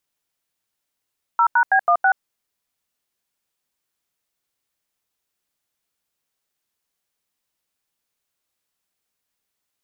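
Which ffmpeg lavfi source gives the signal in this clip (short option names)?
-f lavfi -i "aevalsrc='0.178*clip(min(mod(t,0.163),0.078-mod(t,0.163))/0.002,0,1)*(eq(floor(t/0.163),0)*(sin(2*PI*941*mod(t,0.163))+sin(2*PI*1336*mod(t,0.163)))+eq(floor(t/0.163),1)*(sin(2*PI*941*mod(t,0.163))+sin(2*PI*1477*mod(t,0.163)))+eq(floor(t/0.163),2)*(sin(2*PI*770*mod(t,0.163))+sin(2*PI*1633*mod(t,0.163)))+eq(floor(t/0.163),3)*(sin(2*PI*697*mod(t,0.163))+sin(2*PI*1209*mod(t,0.163)))+eq(floor(t/0.163),4)*(sin(2*PI*770*mod(t,0.163))+sin(2*PI*1477*mod(t,0.163))))':d=0.815:s=44100"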